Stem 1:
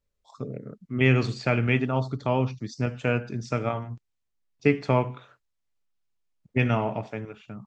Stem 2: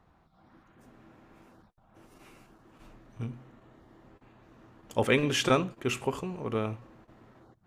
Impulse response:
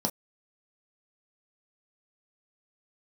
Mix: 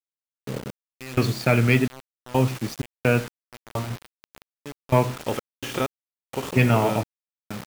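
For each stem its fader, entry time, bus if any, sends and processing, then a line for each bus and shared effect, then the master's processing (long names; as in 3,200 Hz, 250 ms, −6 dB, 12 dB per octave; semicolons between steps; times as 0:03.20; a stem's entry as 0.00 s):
+1.5 dB, 0.00 s, no send, no processing
−6.0 dB, 0.30 s, no send, compressor on every frequency bin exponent 0.6; de-essing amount 75%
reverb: not used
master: leveller curve on the samples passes 1; gate pattern "x.x..xxx..x" 64 BPM −24 dB; bit reduction 6 bits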